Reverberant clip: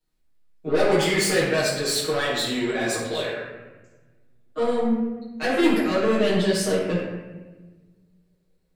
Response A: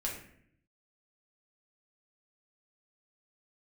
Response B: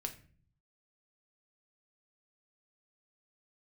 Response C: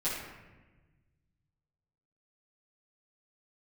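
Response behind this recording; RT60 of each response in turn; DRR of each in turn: C; 0.65 s, 0.45 s, 1.2 s; -3.0 dB, 4.5 dB, -11.5 dB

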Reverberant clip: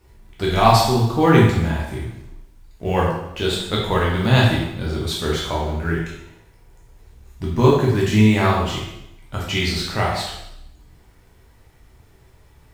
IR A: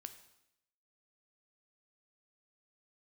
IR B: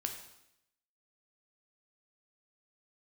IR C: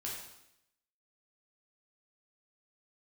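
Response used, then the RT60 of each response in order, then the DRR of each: C; 0.80 s, 0.80 s, 0.80 s; 8.5 dB, 3.5 dB, -4.5 dB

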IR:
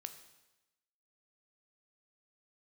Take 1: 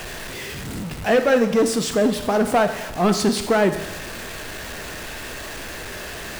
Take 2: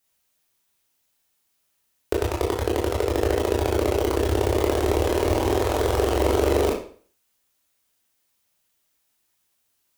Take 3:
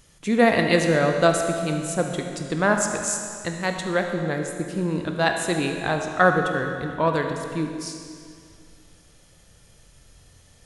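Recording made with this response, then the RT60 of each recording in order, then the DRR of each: 1; 1.0 s, 0.45 s, 2.3 s; 8.0 dB, -3.0 dB, 3.5 dB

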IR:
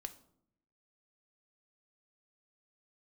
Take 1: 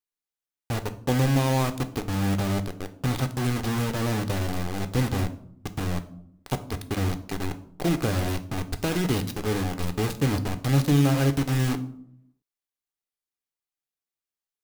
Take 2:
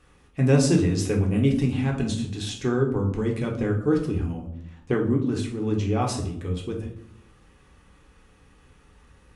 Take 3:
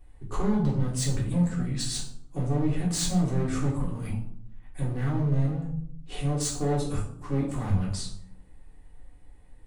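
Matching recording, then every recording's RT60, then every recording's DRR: 1; 0.70 s, 0.70 s, 0.70 s; 8.5 dB, -0.5 dB, -5.0 dB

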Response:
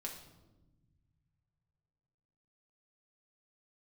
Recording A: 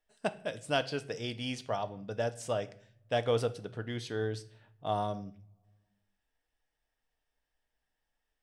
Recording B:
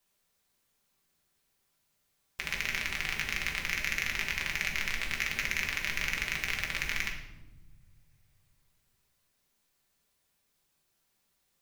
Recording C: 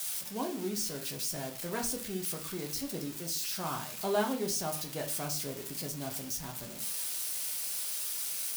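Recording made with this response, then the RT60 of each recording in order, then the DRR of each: B; no single decay rate, 1.1 s, 0.40 s; 9.0 dB, -1.0 dB, 1.5 dB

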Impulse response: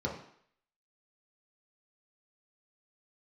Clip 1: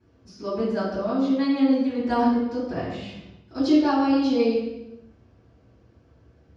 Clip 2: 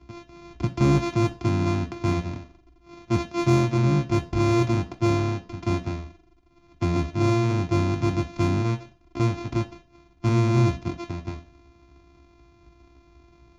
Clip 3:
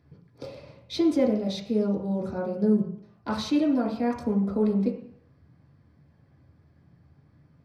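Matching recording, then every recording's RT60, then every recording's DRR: 3; 1.0 s, 0.40 s, 0.60 s; -14.5 dB, 5.0 dB, -3.5 dB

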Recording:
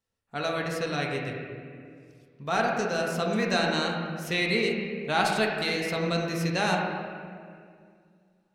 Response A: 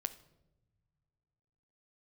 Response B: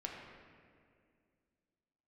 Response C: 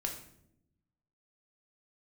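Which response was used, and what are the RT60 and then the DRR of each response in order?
B; no single decay rate, 2.2 s, 0.75 s; 10.5 dB, -1.5 dB, 1.0 dB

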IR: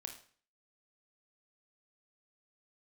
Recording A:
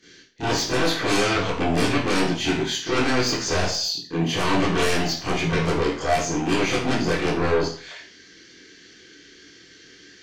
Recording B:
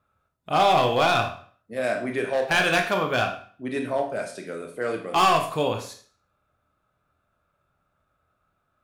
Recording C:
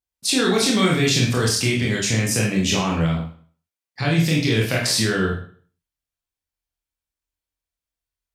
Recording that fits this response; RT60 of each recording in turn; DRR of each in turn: B; 0.45 s, 0.45 s, 0.45 s; -13.0 dB, 4.0 dB, -3.0 dB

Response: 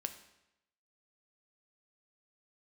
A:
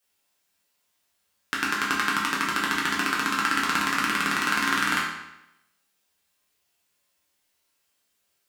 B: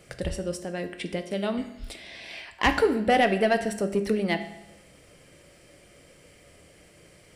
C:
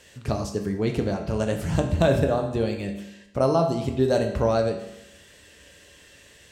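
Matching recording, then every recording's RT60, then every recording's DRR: B; 0.90 s, 0.90 s, 0.90 s; -5.5 dB, 7.5 dB, 3.0 dB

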